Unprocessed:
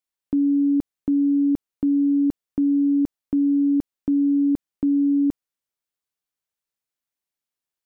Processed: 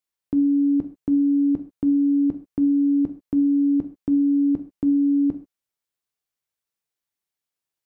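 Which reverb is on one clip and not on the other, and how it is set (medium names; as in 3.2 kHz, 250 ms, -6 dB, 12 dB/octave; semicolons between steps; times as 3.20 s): gated-style reverb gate 160 ms falling, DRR 7.5 dB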